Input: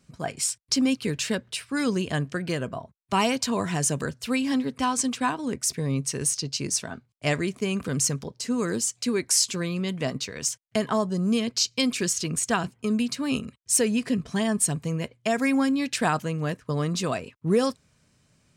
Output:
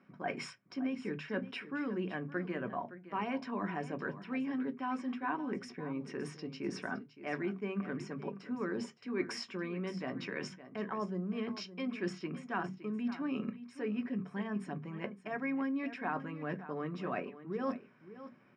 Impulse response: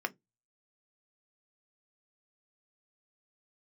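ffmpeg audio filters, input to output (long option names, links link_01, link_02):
-filter_complex "[0:a]lowpass=2100,areverse,acompressor=threshold=-37dB:ratio=10,areverse,aecho=1:1:565:0.2[link_01];[1:a]atrim=start_sample=2205[link_02];[link_01][link_02]afir=irnorm=-1:irlink=0"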